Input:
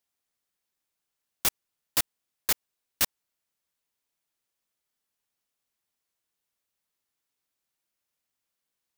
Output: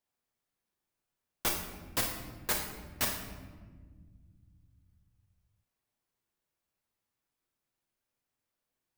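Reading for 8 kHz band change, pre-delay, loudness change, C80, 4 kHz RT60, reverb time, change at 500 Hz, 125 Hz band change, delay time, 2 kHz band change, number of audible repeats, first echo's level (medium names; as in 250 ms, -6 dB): -5.5 dB, 8 ms, -5.0 dB, 7.0 dB, 0.90 s, 1.6 s, +2.5 dB, +5.5 dB, no echo, -1.5 dB, no echo, no echo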